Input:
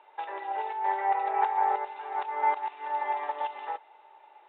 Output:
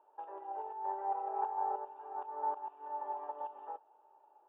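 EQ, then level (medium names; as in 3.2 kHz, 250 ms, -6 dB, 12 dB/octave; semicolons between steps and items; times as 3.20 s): boxcar filter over 21 samples; distance through air 400 m; -5.5 dB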